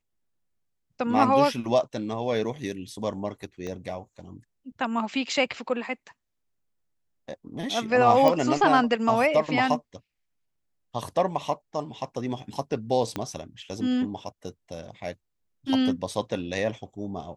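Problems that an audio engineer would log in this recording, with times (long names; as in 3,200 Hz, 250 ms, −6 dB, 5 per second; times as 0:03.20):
0:03.67: click −23 dBFS
0:08.28: click −10 dBFS
0:13.16: click −15 dBFS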